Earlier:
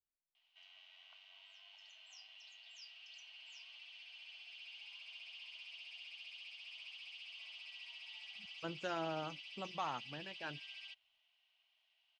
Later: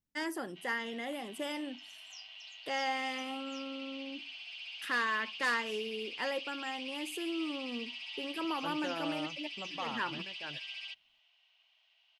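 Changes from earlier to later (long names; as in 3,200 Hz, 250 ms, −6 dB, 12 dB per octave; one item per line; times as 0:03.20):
first voice: unmuted
background +8.0 dB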